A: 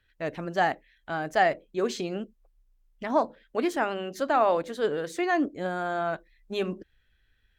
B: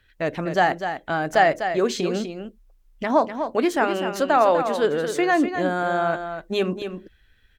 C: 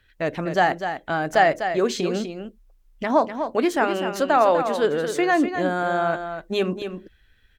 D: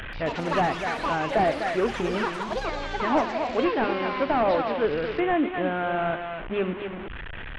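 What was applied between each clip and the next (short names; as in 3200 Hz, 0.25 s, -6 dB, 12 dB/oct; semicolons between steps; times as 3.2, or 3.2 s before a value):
in parallel at -2 dB: compressor, threshold -32 dBFS, peak gain reduction 14 dB; on the sum: echo 0.249 s -8.5 dB; gain +3.5 dB
nothing audible
delta modulation 16 kbps, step -26 dBFS; echoes that change speed 0.131 s, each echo +7 st, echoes 3, each echo -6 dB; gain -3.5 dB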